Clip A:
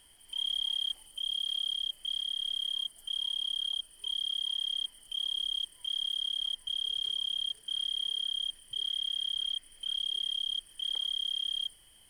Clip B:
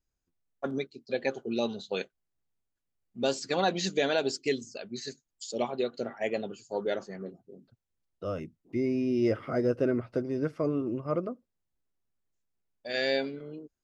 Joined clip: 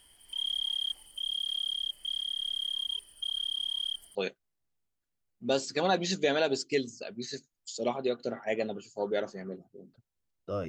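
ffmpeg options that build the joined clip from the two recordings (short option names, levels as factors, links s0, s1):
-filter_complex "[0:a]apad=whole_dur=10.68,atrim=end=10.68,asplit=2[s0][s1];[s0]atrim=end=2.882[s2];[s1]atrim=start=2.878:end=4.152,asetpts=PTS-STARTPTS,areverse[s3];[1:a]atrim=start=1.888:end=8.42[s4];[s2][s3]acrossfade=d=0.004:c1=hsin:c2=hsin[s5];[s5][s4]acrossfade=d=0.004:c1=hsin:c2=hsin"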